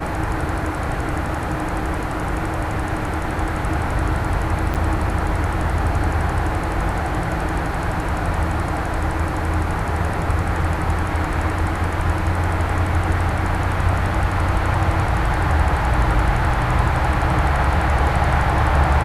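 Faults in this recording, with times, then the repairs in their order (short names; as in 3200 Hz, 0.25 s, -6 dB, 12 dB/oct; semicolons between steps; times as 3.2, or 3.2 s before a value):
4.74–4.75 gap 8.1 ms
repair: interpolate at 4.74, 8.1 ms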